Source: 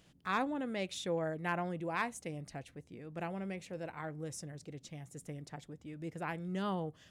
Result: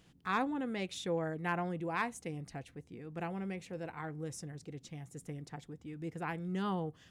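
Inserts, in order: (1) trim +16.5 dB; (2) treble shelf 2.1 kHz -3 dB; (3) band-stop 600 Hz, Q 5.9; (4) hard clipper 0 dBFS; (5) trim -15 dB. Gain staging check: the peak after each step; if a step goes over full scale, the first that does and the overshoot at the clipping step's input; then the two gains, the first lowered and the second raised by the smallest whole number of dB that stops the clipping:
-4.5 dBFS, -5.5 dBFS, -6.0 dBFS, -6.0 dBFS, -21.0 dBFS; nothing clips

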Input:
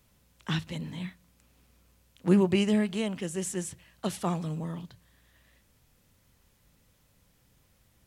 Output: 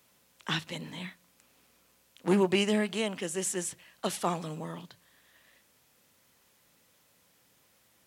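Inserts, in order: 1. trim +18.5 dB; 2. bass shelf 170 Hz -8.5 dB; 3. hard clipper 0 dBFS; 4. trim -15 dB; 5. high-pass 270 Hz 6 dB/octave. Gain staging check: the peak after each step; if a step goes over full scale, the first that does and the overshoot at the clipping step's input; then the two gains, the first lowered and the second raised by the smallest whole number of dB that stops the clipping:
+7.5 dBFS, +5.5 dBFS, 0.0 dBFS, -15.0 dBFS, -14.0 dBFS; step 1, 5.5 dB; step 1 +12.5 dB, step 4 -9 dB

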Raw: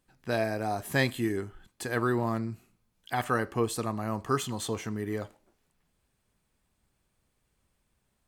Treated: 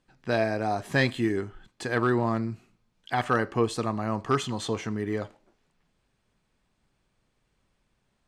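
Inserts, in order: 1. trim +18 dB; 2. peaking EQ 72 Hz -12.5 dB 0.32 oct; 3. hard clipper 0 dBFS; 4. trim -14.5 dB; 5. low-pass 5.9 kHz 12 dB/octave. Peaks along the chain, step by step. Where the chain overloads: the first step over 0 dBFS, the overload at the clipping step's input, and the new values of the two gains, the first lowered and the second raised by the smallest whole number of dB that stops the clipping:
+6.0 dBFS, +5.5 dBFS, 0.0 dBFS, -14.5 dBFS, -14.0 dBFS; step 1, 5.5 dB; step 1 +12 dB, step 4 -8.5 dB

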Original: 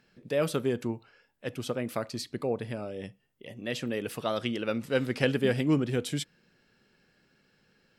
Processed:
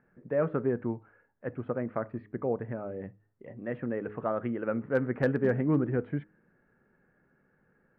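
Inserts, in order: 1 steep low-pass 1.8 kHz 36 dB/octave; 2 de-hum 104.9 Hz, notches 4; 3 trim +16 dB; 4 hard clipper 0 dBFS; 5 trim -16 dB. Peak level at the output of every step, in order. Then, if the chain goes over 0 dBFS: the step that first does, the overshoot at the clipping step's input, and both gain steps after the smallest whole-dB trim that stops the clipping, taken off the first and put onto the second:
-13.0 dBFS, -13.0 dBFS, +3.0 dBFS, 0.0 dBFS, -16.0 dBFS; step 3, 3.0 dB; step 3 +13 dB, step 5 -13 dB

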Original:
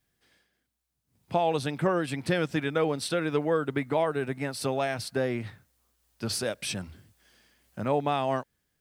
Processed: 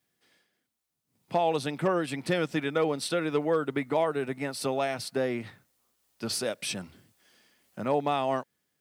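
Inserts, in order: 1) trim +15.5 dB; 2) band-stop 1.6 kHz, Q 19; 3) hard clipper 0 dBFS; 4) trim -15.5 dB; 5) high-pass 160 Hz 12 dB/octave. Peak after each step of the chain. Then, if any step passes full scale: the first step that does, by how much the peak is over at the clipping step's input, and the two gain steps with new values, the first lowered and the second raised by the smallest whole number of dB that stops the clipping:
+4.0 dBFS, +4.0 dBFS, 0.0 dBFS, -15.5 dBFS, -14.0 dBFS; step 1, 4.0 dB; step 1 +11.5 dB, step 4 -11.5 dB

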